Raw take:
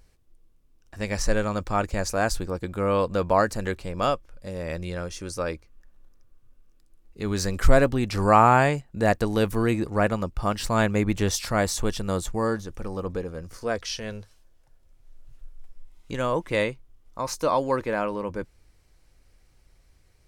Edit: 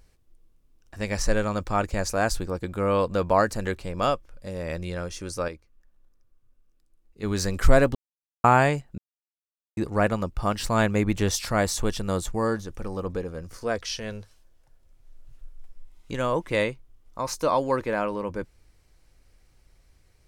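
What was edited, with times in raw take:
5.48–7.23 gain -7 dB
7.95–8.44 mute
8.98–9.77 mute

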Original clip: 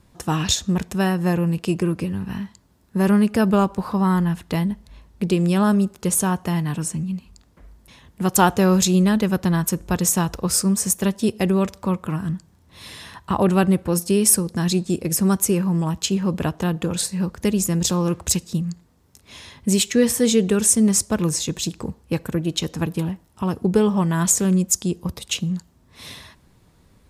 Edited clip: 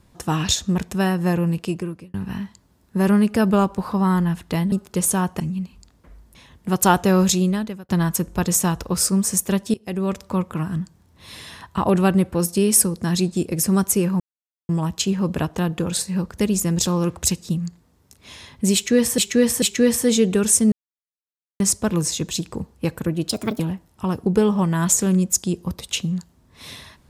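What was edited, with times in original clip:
1.52–2.14 fade out
4.72–5.81 cut
6.49–6.93 cut
8.81–9.42 fade out
11.27–11.78 fade in, from -20 dB
15.73 insert silence 0.49 s
19.78–20.22 loop, 3 plays
20.88 insert silence 0.88 s
22.57–22.98 speed 134%

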